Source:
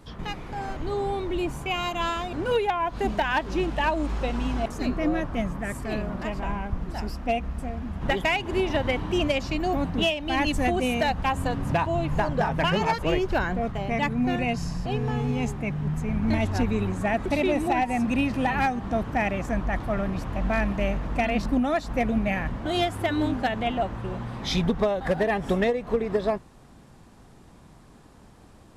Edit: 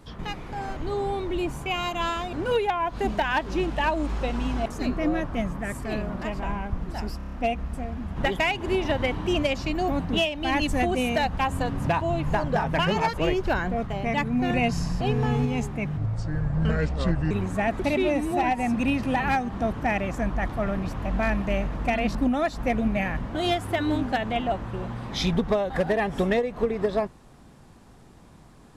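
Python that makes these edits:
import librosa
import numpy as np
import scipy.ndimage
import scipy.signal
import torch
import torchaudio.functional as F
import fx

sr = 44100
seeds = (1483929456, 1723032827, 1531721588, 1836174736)

y = fx.edit(x, sr, fx.stutter(start_s=7.17, slice_s=0.03, count=6),
    fx.clip_gain(start_s=14.35, length_s=0.95, db=3.0),
    fx.speed_span(start_s=15.82, length_s=0.95, speed=0.71),
    fx.stretch_span(start_s=17.43, length_s=0.31, factor=1.5), tone=tone)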